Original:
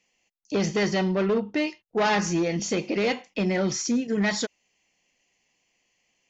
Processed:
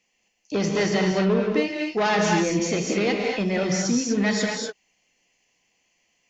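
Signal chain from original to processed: non-linear reverb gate 0.27 s rising, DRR 0.5 dB

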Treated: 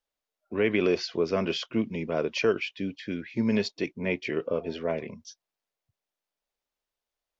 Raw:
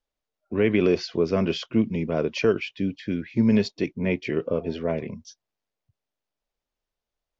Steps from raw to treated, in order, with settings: low shelf 290 Hz -10 dB

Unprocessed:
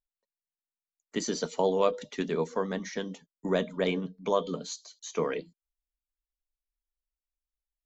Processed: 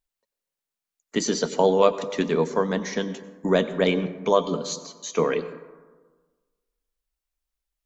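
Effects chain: plate-style reverb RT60 1.4 s, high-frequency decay 0.35×, pre-delay 80 ms, DRR 13.5 dB; gain +7 dB

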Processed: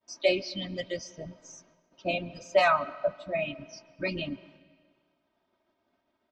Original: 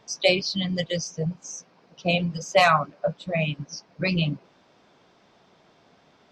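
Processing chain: expander -49 dBFS; high shelf 4600 Hz -12 dB; comb 3.2 ms, depth 79%; on a send: air absorption 67 m + reverb RT60 1.6 s, pre-delay 0.105 s, DRR 19.5 dB; on the sum: gain -6 dB

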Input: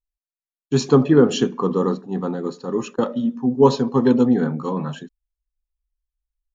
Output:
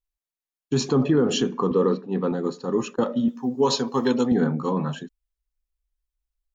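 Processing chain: 3.28–4.32 tilt +3 dB/oct; limiter -11.5 dBFS, peak gain reduction 9.5 dB; 1.71–2.32 speaker cabinet 140–5200 Hz, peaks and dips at 480 Hz +5 dB, 770 Hz -7 dB, 2400 Hz +8 dB

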